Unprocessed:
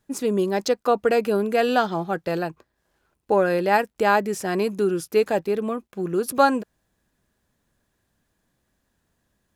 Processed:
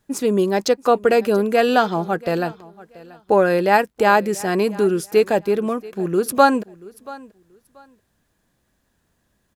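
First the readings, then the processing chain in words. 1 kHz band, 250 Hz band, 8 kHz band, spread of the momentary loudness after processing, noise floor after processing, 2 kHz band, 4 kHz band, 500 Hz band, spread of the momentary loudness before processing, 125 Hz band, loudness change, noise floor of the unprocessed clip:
+4.0 dB, +4.0 dB, +4.0 dB, 9 LU, -69 dBFS, +4.0 dB, +4.0 dB, +4.0 dB, 7 LU, +4.0 dB, +4.0 dB, -74 dBFS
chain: feedback echo 0.683 s, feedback 22%, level -21 dB; gain +4 dB

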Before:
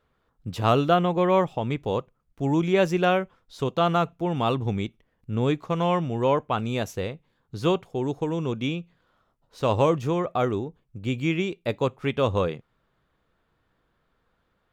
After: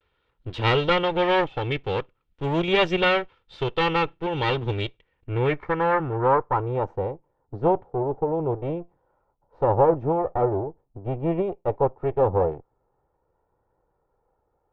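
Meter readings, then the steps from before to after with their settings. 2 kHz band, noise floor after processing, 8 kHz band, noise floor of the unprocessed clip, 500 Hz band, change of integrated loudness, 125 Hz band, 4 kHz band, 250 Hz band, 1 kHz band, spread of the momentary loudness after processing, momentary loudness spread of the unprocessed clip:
+5.0 dB, -73 dBFS, under -10 dB, -72 dBFS, +1.5 dB, +1.0 dB, -1.0 dB, +4.0 dB, -2.5 dB, +2.0 dB, 12 LU, 11 LU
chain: minimum comb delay 2.2 ms; low-pass sweep 3200 Hz -> 780 Hz, 4.89–6.95; vibrato 0.46 Hz 41 cents

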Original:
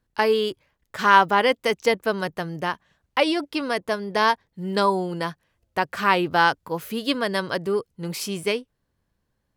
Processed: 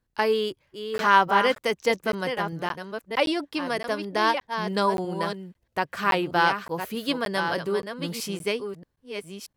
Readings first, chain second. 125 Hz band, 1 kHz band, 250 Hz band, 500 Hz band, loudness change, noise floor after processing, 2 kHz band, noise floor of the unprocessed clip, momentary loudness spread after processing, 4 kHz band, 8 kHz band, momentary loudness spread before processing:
-2.5 dB, -2.5 dB, -2.5 dB, -2.5 dB, -2.5 dB, -75 dBFS, -2.5 dB, -76 dBFS, 12 LU, -2.5 dB, -2.5 dB, 11 LU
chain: reverse delay 0.631 s, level -7.5 dB; crackling interface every 0.57 s, samples 512, zero, from 0.98; gain -3 dB

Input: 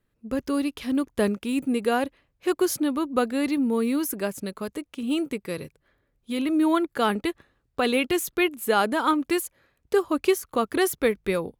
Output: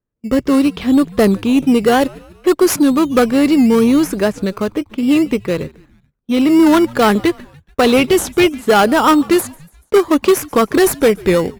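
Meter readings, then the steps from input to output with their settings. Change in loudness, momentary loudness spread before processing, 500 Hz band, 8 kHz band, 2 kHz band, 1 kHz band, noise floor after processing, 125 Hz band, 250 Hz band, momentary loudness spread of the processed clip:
+11.5 dB, 10 LU, +11.5 dB, +10.0 dB, +9.0 dB, +10.5 dB, -58 dBFS, +14.5 dB, +12.5 dB, 9 LU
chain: low-pass opened by the level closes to 1600 Hz, open at -19 dBFS; gate with hold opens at -46 dBFS; in parallel at -7 dB: decimation with a swept rate 14×, swing 60% 0.64 Hz; on the sum: added harmonics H 5 -14 dB, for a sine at -6 dBFS; on a send: frequency-shifting echo 0.144 s, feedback 53%, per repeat -97 Hz, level -23.5 dB; on the sum: record warp 78 rpm, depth 100 cents; gain +5 dB

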